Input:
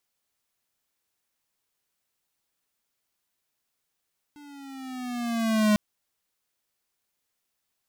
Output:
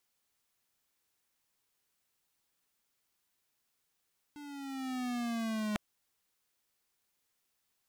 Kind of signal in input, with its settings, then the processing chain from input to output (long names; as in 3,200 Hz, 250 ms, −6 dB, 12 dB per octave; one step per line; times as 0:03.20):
pitch glide with a swell square, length 1.40 s, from 295 Hz, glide −6 semitones, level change +29 dB, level −19 dB
parametric band 630 Hz −3.5 dB 0.23 octaves
reversed playback
downward compressor 16 to 1, threshold −34 dBFS
reversed playback
highs frequency-modulated by the lows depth 0.49 ms